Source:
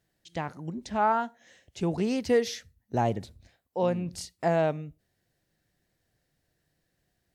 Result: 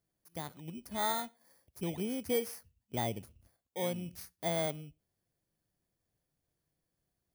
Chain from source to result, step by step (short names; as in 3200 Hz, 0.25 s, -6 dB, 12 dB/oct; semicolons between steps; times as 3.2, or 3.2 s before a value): FFT order left unsorted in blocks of 16 samples; gain -8.5 dB